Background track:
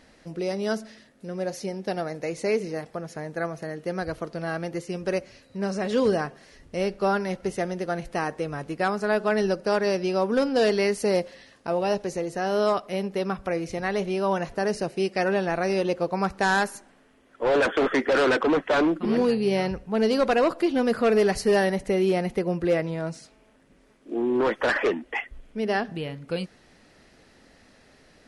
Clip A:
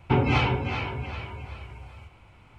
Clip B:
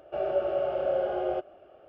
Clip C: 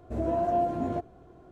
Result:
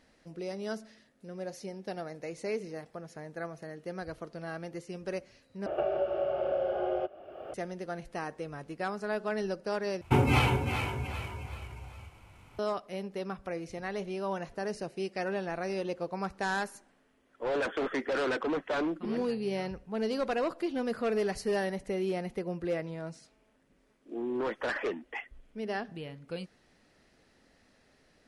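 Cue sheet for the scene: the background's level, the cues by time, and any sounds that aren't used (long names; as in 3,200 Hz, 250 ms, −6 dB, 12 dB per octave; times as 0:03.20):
background track −9.5 dB
0:05.66: overwrite with B −3 dB + multiband upward and downward compressor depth 100%
0:10.01: overwrite with A −2 dB + variable-slope delta modulation 64 kbit/s
not used: C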